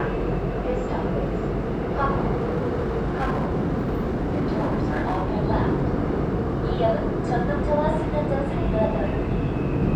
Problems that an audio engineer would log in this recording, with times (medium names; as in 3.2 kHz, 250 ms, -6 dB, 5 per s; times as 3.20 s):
2.37–5.36 s: clipped -19.5 dBFS